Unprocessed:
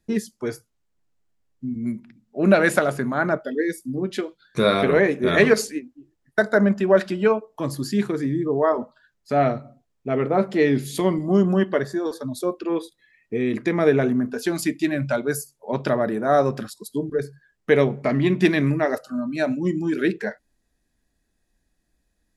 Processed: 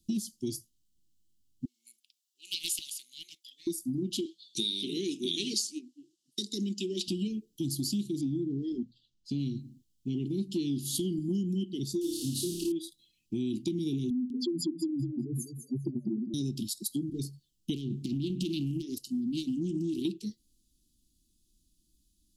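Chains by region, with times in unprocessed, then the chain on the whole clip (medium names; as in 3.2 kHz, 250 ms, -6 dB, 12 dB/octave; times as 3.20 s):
1.65–3.67 s: Chebyshev high-pass 1.7 kHz, order 3 + loudspeaker Doppler distortion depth 0.2 ms
4.25–7.08 s: band-pass 370–7300 Hz + treble shelf 3.1 kHz +7.5 dB
8.21–9.39 s: distance through air 99 m + hum notches 60/120/180 Hz
12.01–12.72 s: one-bit delta coder 64 kbps, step -36.5 dBFS + flutter echo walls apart 5 m, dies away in 0.56 s
14.10–16.34 s: spectral contrast enhancement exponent 3.9 + distance through air 56 m + feedback delay 201 ms, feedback 20%, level -10 dB
17.74–20.05 s: compression 8:1, threshold -22 dBFS + hard clipper -16.5 dBFS + loudspeaker Doppler distortion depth 0.32 ms
whole clip: Chebyshev band-stop 350–2900 Hz, order 5; treble shelf 3.5 kHz +8 dB; compression 6:1, threshold -29 dBFS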